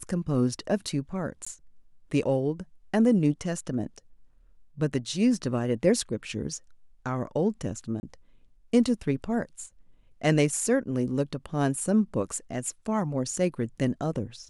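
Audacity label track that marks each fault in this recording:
1.450000	1.470000	gap 15 ms
8.000000	8.030000	gap 30 ms

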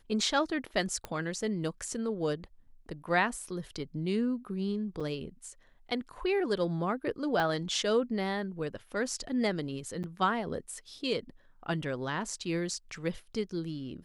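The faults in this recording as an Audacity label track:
1.050000	1.050000	pop -22 dBFS
5.000000	5.010000	gap 5.5 ms
7.400000	7.400000	pop -19 dBFS
10.030000	10.040000	gap 8.7 ms

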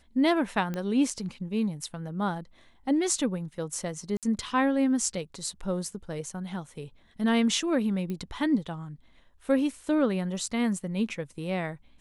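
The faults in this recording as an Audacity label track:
0.740000	0.740000	pop -20 dBFS
4.170000	4.230000	gap 57 ms
8.100000	8.100000	pop -23 dBFS

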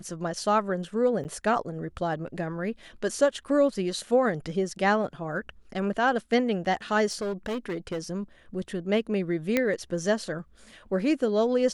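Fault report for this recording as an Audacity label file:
1.240000	1.250000	gap 9.2 ms
7.110000	7.990000	clipped -27 dBFS
9.570000	9.570000	pop -10 dBFS

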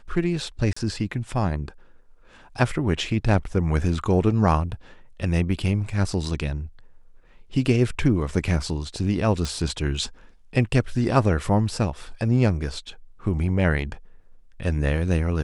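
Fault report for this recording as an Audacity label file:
0.730000	0.770000	gap 35 ms
9.450000	9.450000	pop -15 dBFS

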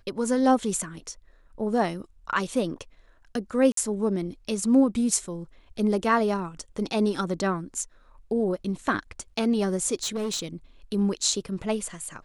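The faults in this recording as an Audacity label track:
3.720000	3.770000	gap 53 ms
10.030000	10.460000	clipped -25 dBFS

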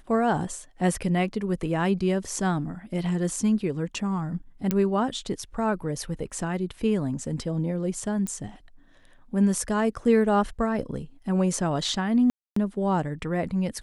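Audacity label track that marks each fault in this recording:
4.710000	4.710000	pop -10 dBFS
8.270000	8.270000	pop -18 dBFS
12.300000	12.560000	gap 0.264 s

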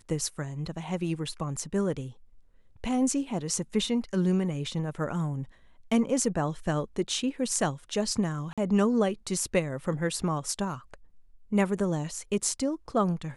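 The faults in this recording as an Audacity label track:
8.530000	8.580000	gap 46 ms

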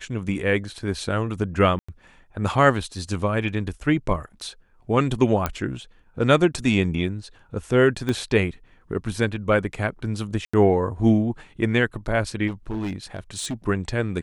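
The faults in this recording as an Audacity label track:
1.790000	1.890000	gap 95 ms
5.460000	5.460000	pop -8 dBFS
8.090000	8.090000	pop -13 dBFS
10.450000	10.540000	gap 85 ms
12.470000	13.540000	clipped -24 dBFS

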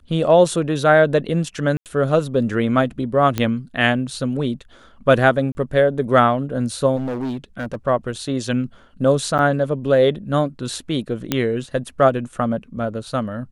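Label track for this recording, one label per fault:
1.770000	1.860000	gap 88 ms
3.380000	3.380000	pop -7 dBFS
5.520000	5.550000	gap 30 ms
6.960000	7.760000	clipped -21.5 dBFS
9.380000	9.390000	gap 8.9 ms
11.320000	11.320000	pop -4 dBFS

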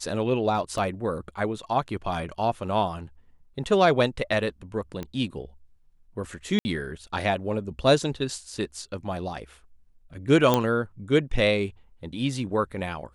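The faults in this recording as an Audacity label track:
0.780000	0.780000	gap 2.1 ms
5.030000	5.030000	pop -20 dBFS
6.590000	6.650000	gap 60 ms
10.540000	10.540000	pop -7 dBFS

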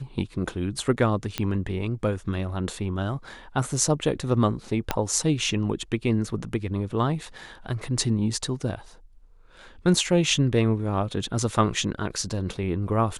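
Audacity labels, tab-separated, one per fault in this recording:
1.380000	1.380000	pop -10 dBFS
4.910000	4.910000	pop -7 dBFS

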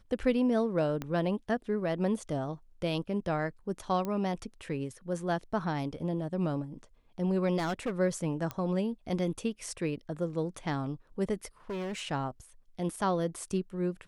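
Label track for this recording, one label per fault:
1.020000	1.020000	pop -21 dBFS
4.050000	4.050000	pop -22 dBFS
7.570000	7.990000	clipped -27.5 dBFS
8.510000	8.510000	pop -20 dBFS
11.700000	12.010000	clipped -33 dBFS

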